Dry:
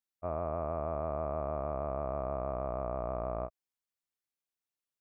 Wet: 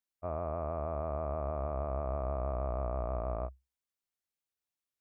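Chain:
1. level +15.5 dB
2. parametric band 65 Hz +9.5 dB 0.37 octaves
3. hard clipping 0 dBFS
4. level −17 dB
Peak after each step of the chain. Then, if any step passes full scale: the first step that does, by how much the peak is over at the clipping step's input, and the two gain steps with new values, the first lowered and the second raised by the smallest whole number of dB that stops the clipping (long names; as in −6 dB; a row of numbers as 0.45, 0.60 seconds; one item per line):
−7.5, −6.0, −6.0, −23.0 dBFS
no step passes full scale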